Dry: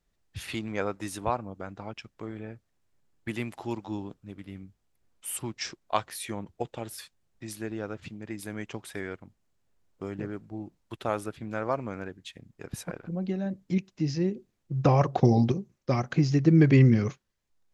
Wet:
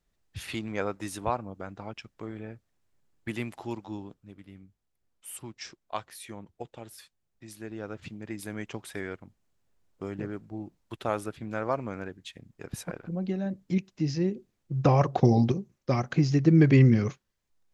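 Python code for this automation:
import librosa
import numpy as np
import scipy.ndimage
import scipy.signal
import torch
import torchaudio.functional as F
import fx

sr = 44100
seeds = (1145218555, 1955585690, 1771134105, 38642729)

y = fx.gain(x, sr, db=fx.line((3.44, -0.5), (4.56, -7.0), (7.49, -7.0), (8.07, 0.0)))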